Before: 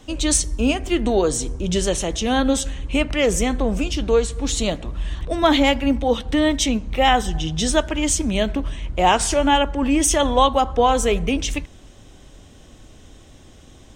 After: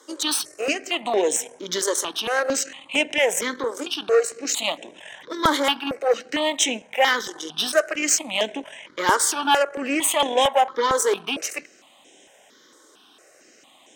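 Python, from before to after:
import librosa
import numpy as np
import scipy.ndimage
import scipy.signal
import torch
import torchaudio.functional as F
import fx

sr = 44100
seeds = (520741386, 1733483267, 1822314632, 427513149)

y = fx.cheby_harmonics(x, sr, harmonics=(8,), levels_db=(-23,), full_scale_db=-4.0)
y = scipy.signal.sosfilt(scipy.signal.bessel(4, 490.0, 'highpass', norm='mag', fs=sr, output='sos'), y)
y = fx.phaser_held(y, sr, hz=4.4, low_hz=710.0, high_hz=4500.0)
y = F.gain(torch.from_numpy(y), 3.5).numpy()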